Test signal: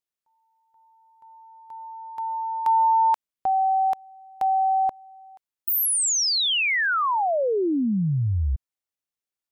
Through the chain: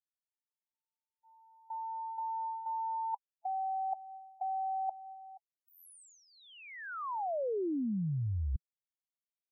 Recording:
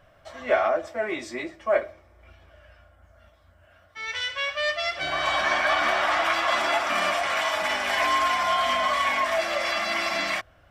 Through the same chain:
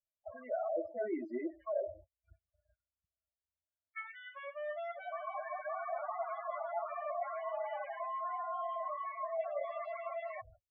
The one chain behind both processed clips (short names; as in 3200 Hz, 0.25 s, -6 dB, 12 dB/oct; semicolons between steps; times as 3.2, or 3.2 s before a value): gate -47 dBFS, range -47 dB; loudest bins only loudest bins 8; reverse; compressor 10:1, threshold -32 dBFS; reverse; air absorption 77 m; treble ducked by the level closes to 940 Hz, closed at -35.5 dBFS